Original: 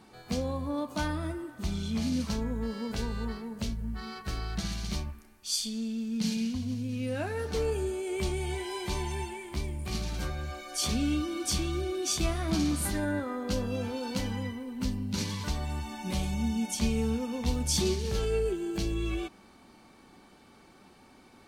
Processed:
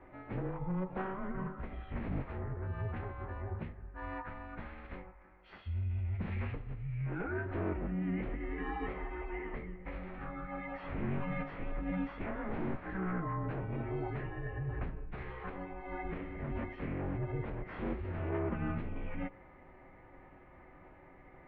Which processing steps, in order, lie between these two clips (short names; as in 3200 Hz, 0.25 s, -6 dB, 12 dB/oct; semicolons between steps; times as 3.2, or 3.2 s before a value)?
wavefolder -26 dBFS; compressor, threshold -35 dBFS, peak gain reduction 6.5 dB; formant-preserving pitch shift -8 st; de-hum 48.67 Hz, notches 32; mistuned SSB -190 Hz 180–2300 Hz; gain +4 dB